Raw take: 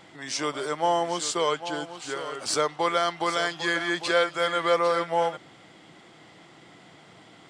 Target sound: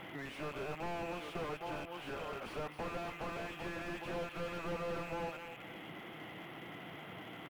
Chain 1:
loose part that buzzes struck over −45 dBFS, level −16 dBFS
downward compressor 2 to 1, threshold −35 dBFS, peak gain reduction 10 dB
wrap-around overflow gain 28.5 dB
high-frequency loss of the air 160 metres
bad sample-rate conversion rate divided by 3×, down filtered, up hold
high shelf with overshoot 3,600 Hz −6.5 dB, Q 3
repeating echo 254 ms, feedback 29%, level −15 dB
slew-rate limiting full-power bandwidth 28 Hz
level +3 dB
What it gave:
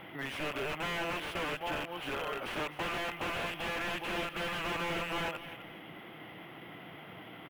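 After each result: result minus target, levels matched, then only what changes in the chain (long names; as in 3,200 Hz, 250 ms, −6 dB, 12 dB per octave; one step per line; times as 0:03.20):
slew-rate limiting: distortion −9 dB; downward compressor: peak gain reduction −4.5 dB
change: slew-rate limiting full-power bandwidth 7.5 Hz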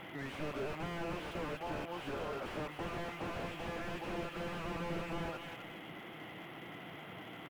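downward compressor: peak gain reduction −4.5 dB
change: downward compressor 2 to 1, threshold −44 dBFS, peak gain reduction 14.5 dB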